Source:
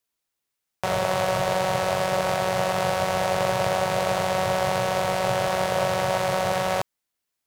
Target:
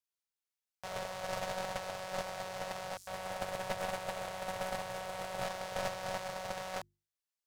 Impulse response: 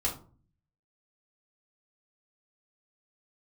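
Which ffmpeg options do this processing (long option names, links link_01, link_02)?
-filter_complex "[0:a]asettb=1/sr,asplit=3[link_01][link_02][link_03];[link_01]atrim=end=2.974[link_04];[link_02]atrim=start=2.97:end=5.45,asetpts=PTS-STARTPTS,afade=type=in:duration=0.004:curve=qsin,afade=type=out:start_time=2.476:duration=0.004:curve=qsin,acrossover=split=5900[link_05][link_06];[link_05]adelay=100[link_07];[link_07][link_06]amix=inputs=2:normalize=0,atrim=end_sample=109368[link_08];[link_03]atrim=start=5.446[link_09];[link_04][link_08]acrossfade=duration=0.004:curve1=hsin:curve2=qsin[link_10];[link_10][link_09]acrossfade=duration=0.004:curve1=qsin:curve2=hsin,alimiter=limit=-13.5dB:level=0:latency=1:release=18,asoftclip=type=tanh:threshold=-17.5dB,agate=range=-20dB:threshold=-23dB:ratio=16:detection=peak,equalizer=frequency=200:width_type=o:width=2:gain=-8,bandreject=frequency=50:width_type=h:width=6,bandreject=frequency=100:width_type=h:width=6,bandreject=frequency=150:width_type=h:width=6,bandreject=frequency=200:width_type=h:width=6,bandreject=frequency=250:width_type=h:width=6,bandreject=frequency=300:width_type=h:width=6,bandreject=frequency=350:width_type=h:width=6,aeval=exprs='0.0299*(cos(1*acos(clip(val(0)/0.0299,-1,1)))-cos(1*PI/2))+0.0133*(cos(2*acos(clip(val(0)/0.0299,-1,1)))-cos(2*PI/2))':channel_layout=same,equalizer=frequency=5400:width_type=o:width=1.4:gain=3,volume=6dB"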